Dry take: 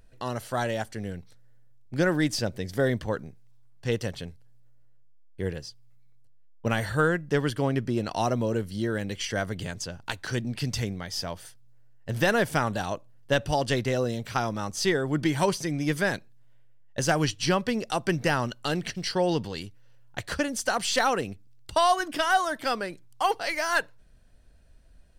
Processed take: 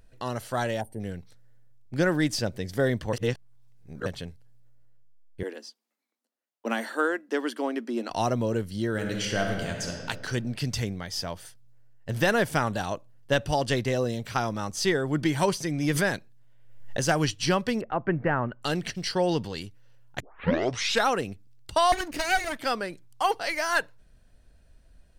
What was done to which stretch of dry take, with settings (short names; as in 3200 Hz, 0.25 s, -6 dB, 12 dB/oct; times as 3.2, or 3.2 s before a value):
0.81–1.01 spectral gain 1000–8400 Hz -21 dB
3.13–4.06 reverse
5.43–8.1 rippled Chebyshev high-pass 220 Hz, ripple 3 dB
8.91–10.02 reverb throw, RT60 1.8 s, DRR 1.5 dB
13.78–14.2 notch 1400 Hz
15.75–17.08 backwards sustainer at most 59 dB/s
17.81–18.62 LPF 1900 Hz 24 dB/oct
20.2 tape start 0.87 s
21.92–22.59 minimum comb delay 0.45 ms